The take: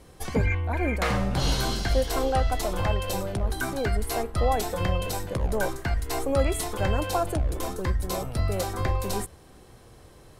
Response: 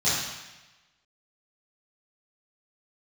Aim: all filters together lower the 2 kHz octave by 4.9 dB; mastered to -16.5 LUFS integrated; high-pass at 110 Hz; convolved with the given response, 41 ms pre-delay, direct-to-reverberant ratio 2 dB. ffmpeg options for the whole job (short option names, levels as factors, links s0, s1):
-filter_complex "[0:a]highpass=110,equalizer=f=2000:t=o:g=-6.5,asplit=2[s0][s1];[1:a]atrim=start_sample=2205,adelay=41[s2];[s1][s2]afir=irnorm=-1:irlink=0,volume=0.158[s3];[s0][s3]amix=inputs=2:normalize=0,volume=3.55"